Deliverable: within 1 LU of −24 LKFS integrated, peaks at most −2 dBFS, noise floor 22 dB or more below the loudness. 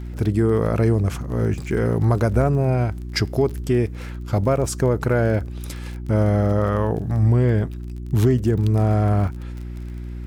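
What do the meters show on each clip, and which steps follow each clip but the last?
crackle rate 29 per second; mains hum 60 Hz; hum harmonics up to 360 Hz; level of the hum −30 dBFS; integrated loudness −20.5 LKFS; sample peak −8.5 dBFS; target loudness −24.0 LKFS
→ click removal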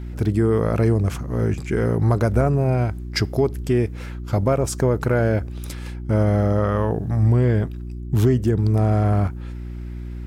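crackle rate 0.68 per second; mains hum 60 Hz; hum harmonics up to 360 Hz; level of the hum −30 dBFS
→ hum removal 60 Hz, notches 6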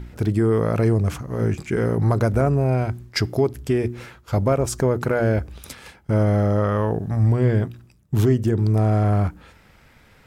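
mains hum none found; integrated loudness −21.5 LKFS; sample peak −8.0 dBFS; target loudness −24.0 LKFS
→ level −2.5 dB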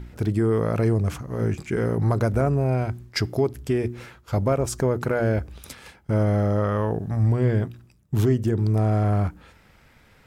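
integrated loudness −24.0 LKFS; sample peak −10.5 dBFS; background noise floor −56 dBFS

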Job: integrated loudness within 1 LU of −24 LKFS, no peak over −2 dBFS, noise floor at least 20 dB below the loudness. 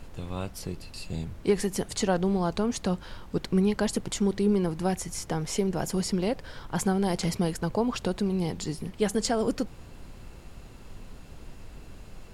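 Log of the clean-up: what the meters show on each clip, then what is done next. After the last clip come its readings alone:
background noise floor −47 dBFS; target noise floor −49 dBFS; integrated loudness −29.0 LKFS; sample peak −11.0 dBFS; target loudness −24.0 LKFS
→ noise reduction from a noise print 6 dB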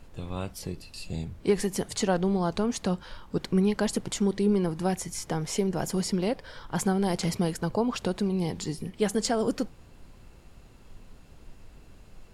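background noise floor −52 dBFS; integrated loudness −29.0 LKFS; sample peak −11.0 dBFS; target loudness −24.0 LKFS
→ level +5 dB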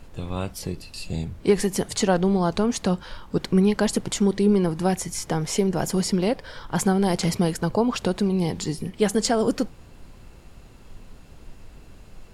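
integrated loudness −24.0 LKFS; sample peak −6.0 dBFS; background noise floor −47 dBFS

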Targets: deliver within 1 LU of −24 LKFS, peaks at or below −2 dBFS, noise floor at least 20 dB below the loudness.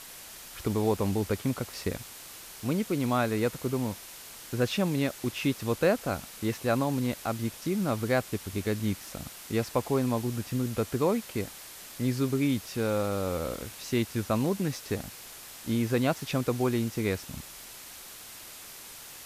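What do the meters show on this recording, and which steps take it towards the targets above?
background noise floor −46 dBFS; target noise floor −50 dBFS; integrated loudness −30.0 LKFS; sample peak −12.0 dBFS; target loudness −24.0 LKFS
→ broadband denoise 6 dB, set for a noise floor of −46 dBFS
level +6 dB

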